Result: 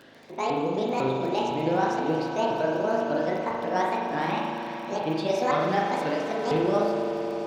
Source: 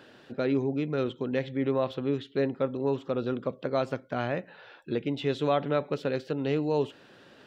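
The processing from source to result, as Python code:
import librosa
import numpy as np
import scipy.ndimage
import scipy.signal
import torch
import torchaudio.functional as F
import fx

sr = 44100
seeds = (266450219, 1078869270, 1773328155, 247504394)

p1 = fx.pitch_ramps(x, sr, semitones=10.5, every_ms=501)
p2 = fx.dmg_crackle(p1, sr, seeds[0], per_s=18.0, level_db=-38.0)
p3 = p2 + fx.echo_swell(p2, sr, ms=85, loudest=5, wet_db=-15.0, dry=0)
y = fx.rev_spring(p3, sr, rt60_s=1.2, pass_ms=(38,), chirp_ms=20, drr_db=-1.5)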